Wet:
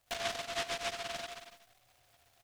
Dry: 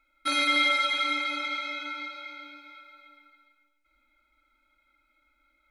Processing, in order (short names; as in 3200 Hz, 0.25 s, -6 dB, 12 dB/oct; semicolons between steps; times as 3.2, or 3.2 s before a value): dynamic EQ 190 Hz, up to -6 dB, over -52 dBFS, Q 1.2; compressor 6:1, threshold -31 dBFS, peak gain reduction 10.5 dB; chorus voices 2, 0.5 Hz, delay 18 ms, depth 2.4 ms; speed mistake 33 rpm record played at 78 rpm; band shelf 600 Hz +14 dB 1.1 oct; loudspeakers at several distances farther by 47 m -3 dB, 74 m -8 dB, 93 m -11 dB; treble ducked by the level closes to 1100 Hz, closed at -32.5 dBFS; on a send at -1 dB: reverb RT60 0.25 s, pre-delay 3 ms; on the sum: treble ducked by the level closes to 2000 Hz, closed at -42.5 dBFS; noise-modulated delay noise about 2300 Hz, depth 0.22 ms; gain -3 dB